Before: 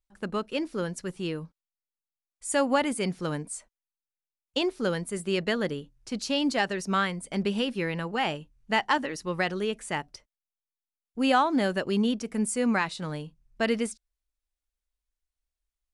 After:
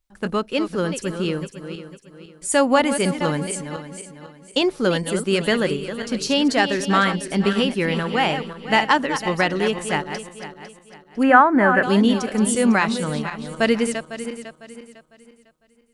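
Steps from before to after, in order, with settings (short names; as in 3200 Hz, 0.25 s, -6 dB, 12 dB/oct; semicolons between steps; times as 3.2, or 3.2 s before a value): regenerating reverse delay 0.251 s, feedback 57%, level -9 dB; 11.23–11.83 resonant high shelf 2600 Hz -14 dB, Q 3; gain +7.5 dB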